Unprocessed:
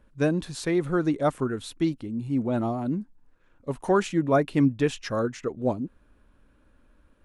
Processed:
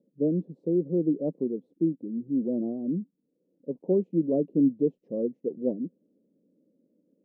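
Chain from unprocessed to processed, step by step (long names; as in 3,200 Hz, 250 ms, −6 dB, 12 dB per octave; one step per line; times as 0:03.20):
elliptic band-pass filter 170–520 Hz, stop band 50 dB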